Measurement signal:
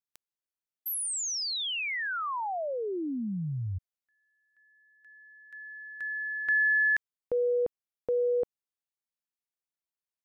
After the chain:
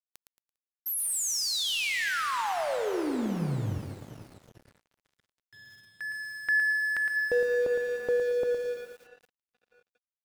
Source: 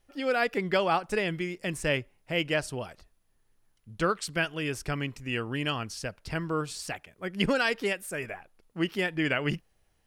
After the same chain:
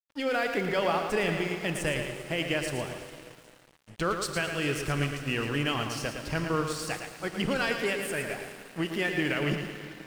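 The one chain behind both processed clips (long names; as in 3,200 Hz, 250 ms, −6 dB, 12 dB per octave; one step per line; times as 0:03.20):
brickwall limiter −21 dBFS
on a send: delay with a high-pass on its return 401 ms, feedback 70%, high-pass 3,000 Hz, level −18 dB
on the sum: dense smooth reverb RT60 4.4 s, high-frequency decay 0.85×, DRR 6.5 dB
dead-zone distortion −47 dBFS
feedback echo at a low word length 112 ms, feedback 35%, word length 9 bits, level −7 dB
level +2.5 dB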